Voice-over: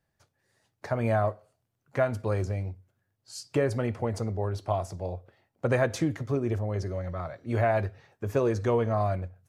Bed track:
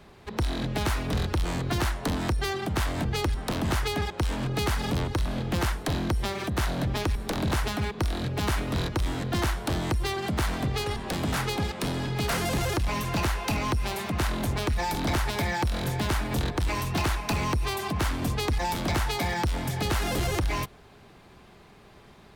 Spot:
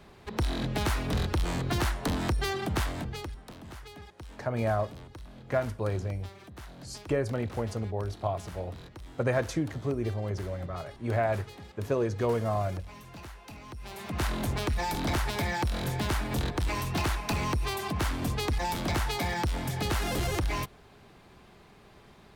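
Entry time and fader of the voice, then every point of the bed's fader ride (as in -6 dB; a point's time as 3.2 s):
3.55 s, -2.5 dB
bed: 2.77 s -1.5 dB
3.58 s -18.5 dB
13.67 s -18.5 dB
14.23 s -2.5 dB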